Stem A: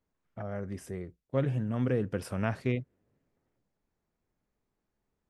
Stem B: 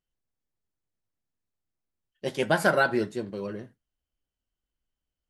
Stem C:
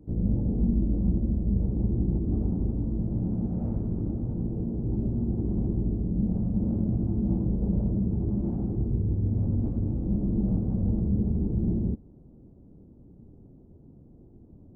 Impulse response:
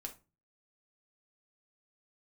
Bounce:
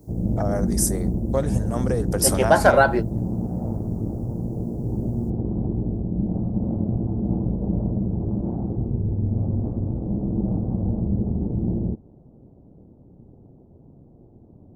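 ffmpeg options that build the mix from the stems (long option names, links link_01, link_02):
-filter_complex "[0:a]acompressor=threshold=-30dB:ratio=4,aexciter=amount=14.5:drive=6.6:freq=4400,volume=3dB,asplit=2[link_01][link_02];[1:a]volume=-2dB[link_03];[2:a]equalizer=frequency=120:width=0.82:gain=7,tremolo=f=120:d=0.519,volume=-1.5dB[link_04];[link_02]apad=whole_len=233679[link_05];[link_03][link_05]sidechaingate=range=-28dB:threshold=-56dB:ratio=16:detection=peak[link_06];[link_01][link_06][link_04]amix=inputs=3:normalize=0,equalizer=frequency=750:width_type=o:width=1.8:gain=12.5"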